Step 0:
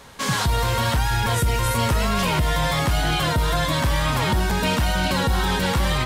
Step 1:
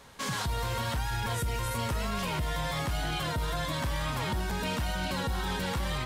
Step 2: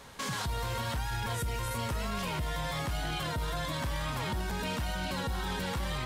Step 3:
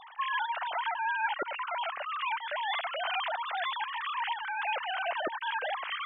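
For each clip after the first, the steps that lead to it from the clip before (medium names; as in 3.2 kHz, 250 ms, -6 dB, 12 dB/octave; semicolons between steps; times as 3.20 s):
peak limiter -16 dBFS, peak gain reduction 4 dB; trim -8 dB
peak limiter -29 dBFS, peak gain reduction 5 dB; trim +2.5 dB
formants replaced by sine waves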